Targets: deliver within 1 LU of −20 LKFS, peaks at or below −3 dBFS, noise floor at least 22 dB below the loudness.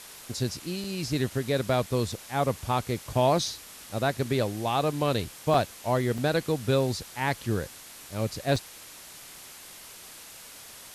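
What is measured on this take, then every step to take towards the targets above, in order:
number of dropouts 5; longest dropout 2.6 ms; background noise floor −47 dBFS; target noise floor −51 dBFS; integrated loudness −28.5 LKFS; sample peak −10.5 dBFS; target loudness −20.0 LKFS
→ repair the gap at 0:00.84/0:02.12/0:05.54/0:06.18/0:08.56, 2.6 ms
broadband denoise 6 dB, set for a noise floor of −47 dBFS
level +8.5 dB
brickwall limiter −3 dBFS

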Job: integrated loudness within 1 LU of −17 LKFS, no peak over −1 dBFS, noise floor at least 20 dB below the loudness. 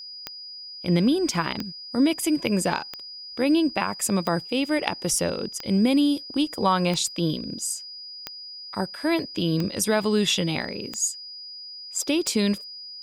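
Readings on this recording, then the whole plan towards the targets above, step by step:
number of clicks 10; interfering tone 4,900 Hz; level of the tone −37 dBFS; integrated loudness −24.5 LKFS; sample peak −3.5 dBFS; target loudness −17.0 LKFS
→ click removal
notch filter 4,900 Hz, Q 30
level +7.5 dB
brickwall limiter −1 dBFS

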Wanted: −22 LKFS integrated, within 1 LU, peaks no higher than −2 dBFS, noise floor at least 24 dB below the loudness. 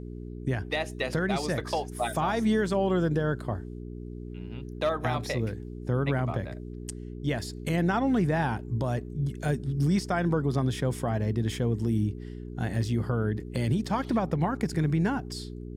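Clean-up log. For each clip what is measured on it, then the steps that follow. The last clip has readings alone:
mains hum 60 Hz; hum harmonics up to 420 Hz; level of the hum −36 dBFS; integrated loudness −29.0 LKFS; sample peak −15.5 dBFS; target loudness −22.0 LKFS
→ hum removal 60 Hz, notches 7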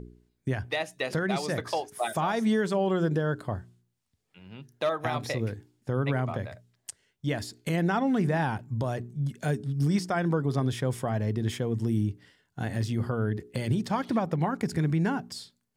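mains hum none found; integrated loudness −29.0 LKFS; sample peak −16.0 dBFS; target loudness −22.0 LKFS
→ level +7 dB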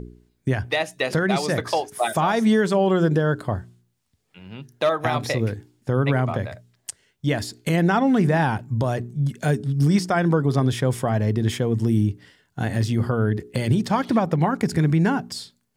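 integrated loudness −22.0 LKFS; sample peak −9.0 dBFS; background noise floor −70 dBFS

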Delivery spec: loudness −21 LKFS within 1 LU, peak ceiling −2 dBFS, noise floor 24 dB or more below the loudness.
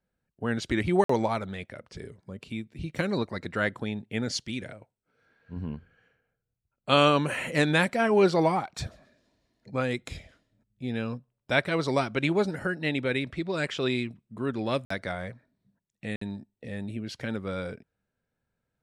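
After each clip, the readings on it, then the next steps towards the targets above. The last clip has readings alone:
number of dropouts 3; longest dropout 54 ms; integrated loudness −28.5 LKFS; sample peak −8.0 dBFS; target loudness −21.0 LKFS
→ repair the gap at 0:01.04/0:14.85/0:16.16, 54 ms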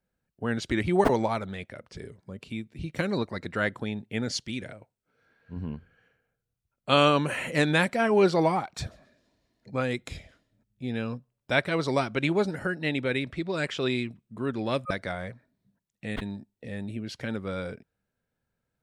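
number of dropouts 0; integrated loudness −28.5 LKFS; sample peak −8.0 dBFS; target loudness −21.0 LKFS
→ level +7.5 dB
brickwall limiter −2 dBFS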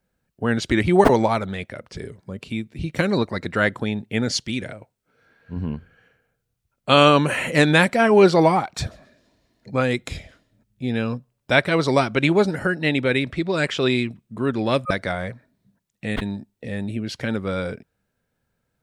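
integrated loudness −21.0 LKFS; sample peak −2.0 dBFS; background noise floor −76 dBFS

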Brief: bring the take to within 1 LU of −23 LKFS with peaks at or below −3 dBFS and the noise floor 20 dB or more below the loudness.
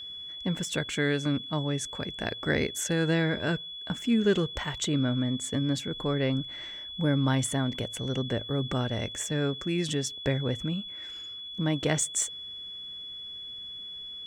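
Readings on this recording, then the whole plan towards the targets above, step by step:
interfering tone 3,400 Hz; level of the tone −38 dBFS; integrated loudness −29.5 LKFS; sample peak −12.0 dBFS; target loudness −23.0 LKFS
→ notch filter 3,400 Hz, Q 30
level +6.5 dB

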